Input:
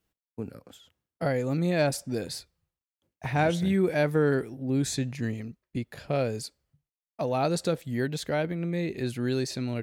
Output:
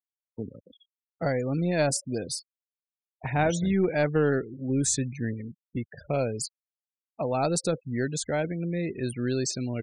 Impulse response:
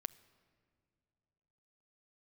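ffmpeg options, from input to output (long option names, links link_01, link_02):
-filter_complex "[0:a]aeval=exprs='0.237*(cos(1*acos(clip(val(0)/0.237,-1,1)))-cos(1*PI/2))+0.00237*(cos(4*acos(clip(val(0)/0.237,-1,1)))-cos(4*PI/2))+0.0168*(cos(6*acos(clip(val(0)/0.237,-1,1)))-cos(6*PI/2))+0.00944*(cos(8*acos(clip(val(0)/0.237,-1,1)))-cos(8*PI/2))':channel_layout=same,afftfilt=real='re*gte(hypot(re,im),0.0141)':imag='im*gte(hypot(re,im),0.0141)':win_size=1024:overlap=0.75,aexciter=amount=6.7:drive=5.3:freq=5900,acrossover=split=6500[link_01][link_02];[link_02]acompressor=threshold=-34dB:ratio=4:attack=1:release=60[link_03];[link_01][link_03]amix=inputs=2:normalize=0,aresample=22050,aresample=44100"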